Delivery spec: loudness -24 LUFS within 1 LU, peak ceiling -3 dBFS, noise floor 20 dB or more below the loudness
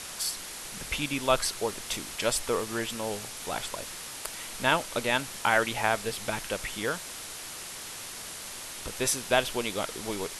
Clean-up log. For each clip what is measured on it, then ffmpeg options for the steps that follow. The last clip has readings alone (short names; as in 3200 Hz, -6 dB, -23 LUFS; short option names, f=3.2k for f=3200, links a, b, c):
noise floor -41 dBFS; noise floor target -51 dBFS; loudness -30.5 LUFS; peak -8.0 dBFS; loudness target -24.0 LUFS
-> -af "afftdn=nr=10:nf=-41"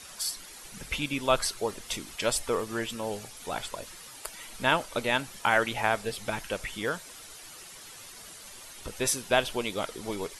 noise floor -47 dBFS; noise floor target -50 dBFS
-> -af "afftdn=nr=6:nf=-47"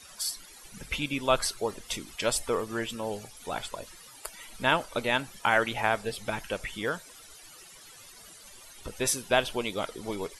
noise floor -51 dBFS; loudness -30.0 LUFS; peak -8.0 dBFS; loudness target -24.0 LUFS
-> -af "volume=6dB,alimiter=limit=-3dB:level=0:latency=1"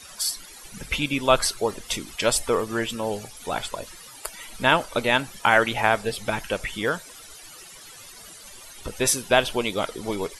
loudness -24.0 LUFS; peak -3.0 dBFS; noise floor -45 dBFS